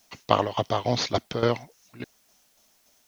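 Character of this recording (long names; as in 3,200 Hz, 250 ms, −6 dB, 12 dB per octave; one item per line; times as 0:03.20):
tremolo saw down 3.5 Hz, depth 75%
a quantiser's noise floor 12 bits, dither triangular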